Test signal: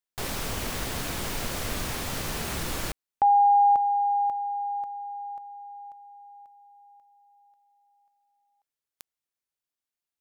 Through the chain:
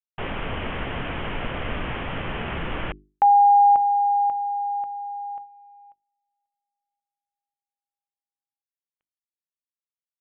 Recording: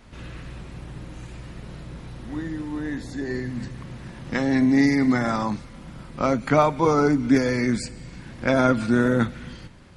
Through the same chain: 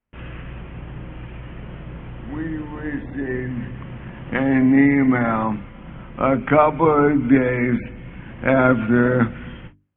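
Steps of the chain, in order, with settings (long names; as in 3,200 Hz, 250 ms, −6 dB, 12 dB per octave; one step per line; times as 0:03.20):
noise gate −41 dBFS, range −36 dB
Butterworth low-pass 3,200 Hz 96 dB per octave
mains-hum notches 50/100/150/200/250/300/350/400 Hz
level +4 dB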